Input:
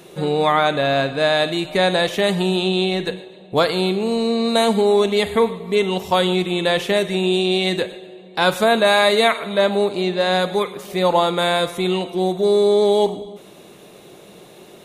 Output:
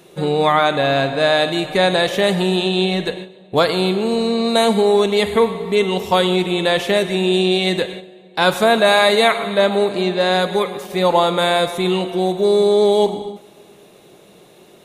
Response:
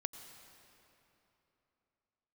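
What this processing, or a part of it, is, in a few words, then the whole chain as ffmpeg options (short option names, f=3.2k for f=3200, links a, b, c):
keyed gated reverb: -filter_complex "[0:a]asplit=3[a][b][c];[1:a]atrim=start_sample=2205[d];[b][d]afir=irnorm=-1:irlink=0[e];[c]apad=whole_len=654473[f];[e][f]sidechaingate=range=-15dB:threshold=-34dB:ratio=16:detection=peak,volume=3dB[g];[a][g]amix=inputs=2:normalize=0,volume=-5dB"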